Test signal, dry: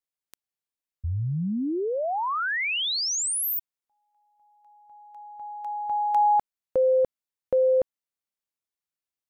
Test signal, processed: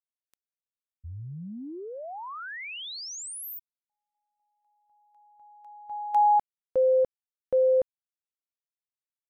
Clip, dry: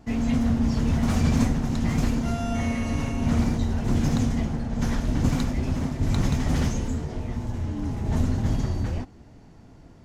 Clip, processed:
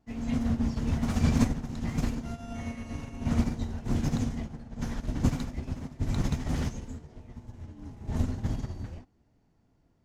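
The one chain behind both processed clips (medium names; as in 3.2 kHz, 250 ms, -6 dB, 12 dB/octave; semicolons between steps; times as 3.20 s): upward expansion 2.5:1, over -30 dBFS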